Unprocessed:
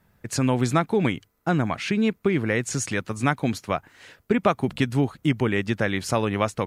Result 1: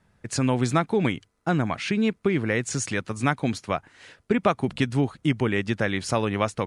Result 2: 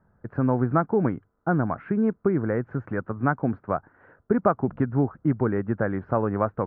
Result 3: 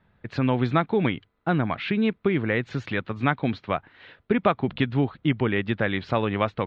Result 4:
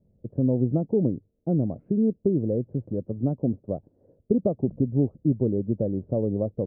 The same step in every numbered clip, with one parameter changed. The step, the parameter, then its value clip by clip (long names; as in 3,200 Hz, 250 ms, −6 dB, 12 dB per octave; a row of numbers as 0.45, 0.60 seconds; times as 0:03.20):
Chebyshev low-pass filter, frequency: 10,000, 1,500, 3,800, 570 Hertz